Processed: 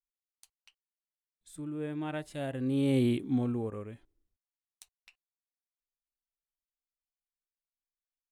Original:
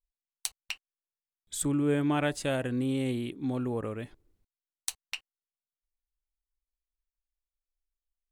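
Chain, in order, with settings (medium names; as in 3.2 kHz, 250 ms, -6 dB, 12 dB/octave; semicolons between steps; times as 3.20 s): Doppler pass-by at 3.12 s, 14 m/s, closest 2.8 m; harmonic-percussive split percussive -10 dB; trim +7 dB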